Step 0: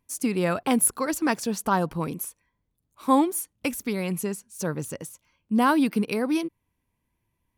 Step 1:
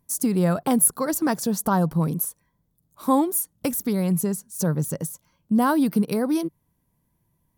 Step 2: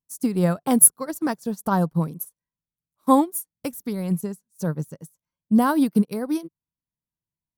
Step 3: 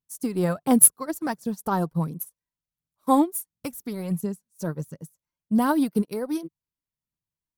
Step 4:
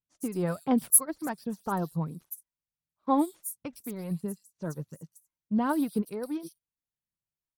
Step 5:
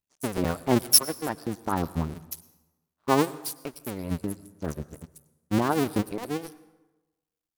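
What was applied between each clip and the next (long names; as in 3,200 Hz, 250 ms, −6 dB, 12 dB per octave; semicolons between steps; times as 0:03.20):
graphic EQ with 15 bands 160 Hz +10 dB, 630 Hz +3 dB, 2,500 Hz −10 dB, 16,000 Hz +12 dB; in parallel at +2.5 dB: downward compressor, threshold −26 dBFS, peak gain reduction 13 dB; on the sum: level −4 dB
expander for the loud parts 2.5 to 1, over −36 dBFS; level +7 dB
phase shifter 1.4 Hz, delay 3.3 ms, feedback 39%; level −2.5 dB
pitch vibrato 1.4 Hz 32 cents; multiband delay without the direct sound lows, highs 110 ms, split 4,200 Hz; level −5.5 dB
sub-harmonics by changed cycles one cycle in 2, muted; dense smooth reverb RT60 1.1 s, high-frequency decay 0.65×, pre-delay 85 ms, DRR 18.5 dB; level +5.5 dB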